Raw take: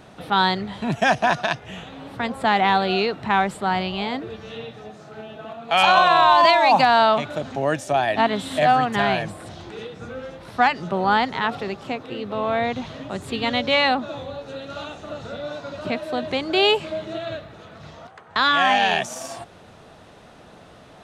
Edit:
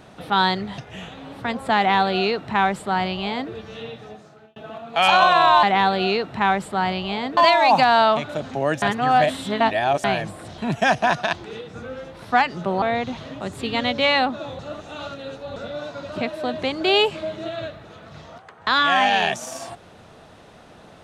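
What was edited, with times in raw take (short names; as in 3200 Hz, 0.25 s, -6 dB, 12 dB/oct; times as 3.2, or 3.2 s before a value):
0.78–1.53 move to 9.59
2.52–4.26 copy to 6.38
4.82–5.31 fade out
7.83–9.05 reverse
11.08–12.51 cut
14.28–15.25 reverse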